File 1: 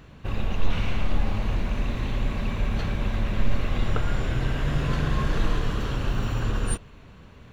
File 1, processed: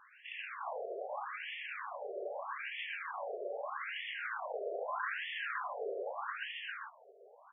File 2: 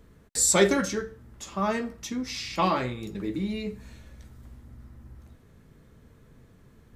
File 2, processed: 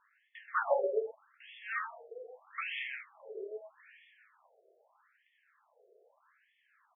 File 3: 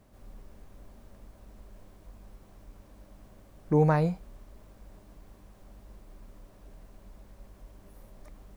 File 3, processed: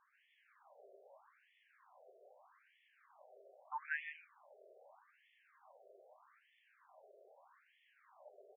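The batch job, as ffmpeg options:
-af "aecho=1:1:128:0.596,afftfilt=real='re*between(b*sr/1024,500*pow(2500/500,0.5+0.5*sin(2*PI*0.8*pts/sr))/1.41,500*pow(2500/500,0.5+0.5*sin(2*PI*0.8*pts/sr))*1.41)':imag='im*between(b*sr/1024,500*pow(2500/500,0.5+0.5*sin(2*PI*0.8*pts/sr))/1.41,500*pow(2500/500,0.5+0.5*sin(2*PI*0.8*pts/sr))*1.41)':win_size=1024:overlap=0.75"

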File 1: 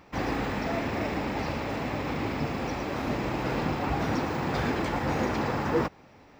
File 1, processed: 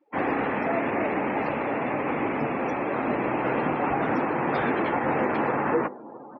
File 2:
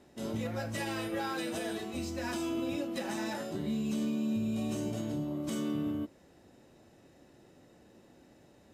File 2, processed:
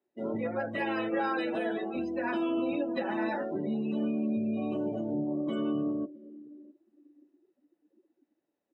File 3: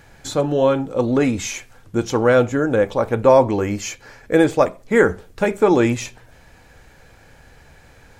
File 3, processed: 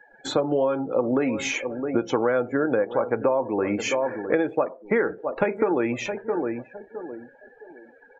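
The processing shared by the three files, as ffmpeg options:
-filter_complex "[0:a]acrossover=split=220 3500:gain=0.112 1 0.251[a][b][c];[a][b][c]amix=inputs=3:normalize=0,asplit=2[d][e];[e]adelay=662,lowpass=f=1.8k:p=1,volume=-16dB,asplit=2[f][g];[g]adelay=662,lowpass=f=1.8k:p=1,volume=0.33,asplit=2[h][i];[i]adelay=662,lowpass=f=1.8k:p=1,volume=0.33[j];[d][f][h][j]amix=inputs=4:normalize=0,acompressor=threshold=-25dB:ratio=12,afftdn=nr=30:nf=-44,adynamicequalizer=threshold=0.00158:dfrequency=130:dqfactor=2.9:tfrequency=130:tqfactor=2.9:attack=5:release=100:ratio=0.375:range=2.5:mode=boostabove:tftype=bell,volume=6dB"

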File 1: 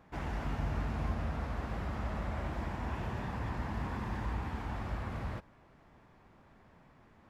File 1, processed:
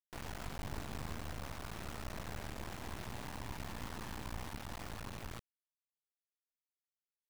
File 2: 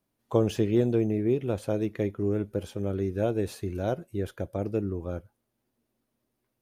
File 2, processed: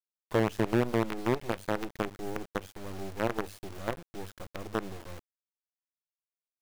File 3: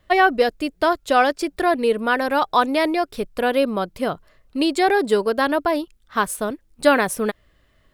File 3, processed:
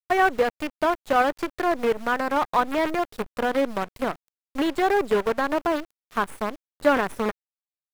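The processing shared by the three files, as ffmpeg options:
-filter_complex "[0:a]bandreject=f=50:t=h:w=6,bandreject=f=100:t=h:w=6,acrusher=bits=4:dc=4:mix=0:aa=0.000001,acrossover=split=2700[a][b];[b]acompressor=threshold=-38dB:ratio=4:attack=1:release=60[c];[a][c]amix=inputs=2:normalize=0,volume=-4dB"

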